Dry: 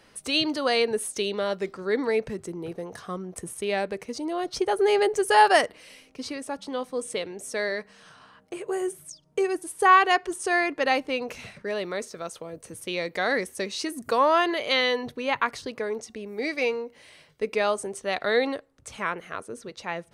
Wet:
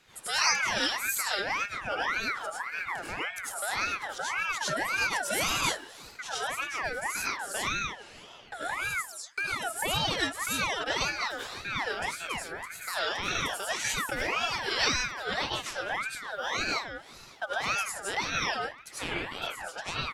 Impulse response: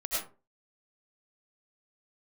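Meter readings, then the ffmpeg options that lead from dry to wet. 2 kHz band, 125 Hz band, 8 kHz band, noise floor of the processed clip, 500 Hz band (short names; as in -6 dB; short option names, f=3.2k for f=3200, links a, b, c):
-0.5 dB, +1.0 dB, +4.0 dB, -50 dBFS, -12.5 dB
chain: -filter_complex "[0:a]asplit=2[a][b];[b]adelay=150,highpass=300,lowpass=3.4k,asoftclip=type=hard:threshold=-13.5dB,volume=-21dB[c];[a][c]amix=inputs=2:normalize=0[d];[1:a]atrim=start_sample=2205,afade=t=out:st=0.21:d=0.01,atrim=end_sample=9702[e];[d][e]afir=irnorm=-1:irlink=0,acrossover=split=240|3000[f][g][h];[g]acompressor=threshold=-28dB:ratio=6[i];[f][i][h]amix=inputs=3:normalize=0,aeval=exprs='val(0)*sin(2*PI*1500*n/s+1500*0.35/1.8*sin(2*PI*1.8*n/s))':c=same"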